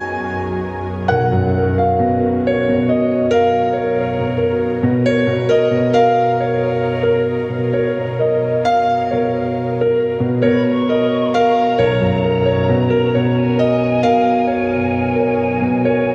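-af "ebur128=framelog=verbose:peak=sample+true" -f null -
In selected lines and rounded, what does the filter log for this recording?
Integrated loudness:
  I:         -16.2 LUFS
  Threshold: -26.2 LUFS
Loudness range:
  LRA:         1.9 LU
  Threshold: -36.0 LUFS
  LRA low:   -17.1 LUFS
  LRA high:  -15.3 LUFS
Sample peak:
  Peak:       -1.8 dBFS
True peak:
  Peak:       -1.8 dBFS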